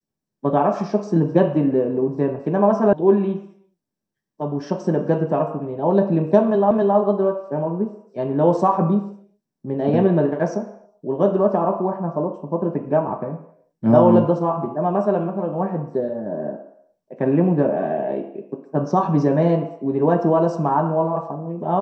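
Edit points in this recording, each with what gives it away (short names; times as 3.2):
2.93 sound cut off
6.71 repeat of the last 0.27 s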